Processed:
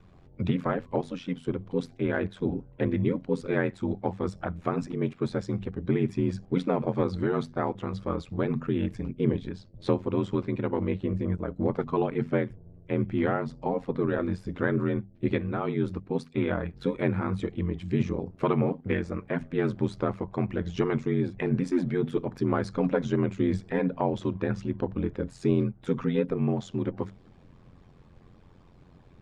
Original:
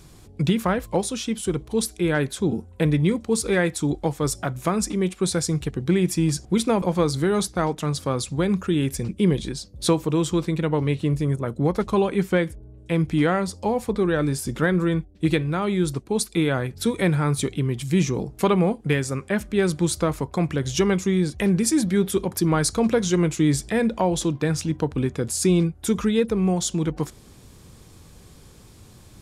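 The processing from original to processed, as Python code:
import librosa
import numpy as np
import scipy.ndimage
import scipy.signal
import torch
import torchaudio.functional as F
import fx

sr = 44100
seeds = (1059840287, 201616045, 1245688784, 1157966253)

y = fx.spec_quant(x, sr, step_db=15)
y = scipy.signal.sosfilt(scipy.signal.butter(2, 2200.0, 'lowpass', fs=sr, output='sos'), y)
y = fx.hum_notches(y, sr, base_hz=50, count=4)
y = y * np.sin(2.0 * np.pi * 44.0 * np.arange(len(y)) / sr)
y = F.gain(torch.from_numpy(y), -2.0).numpy()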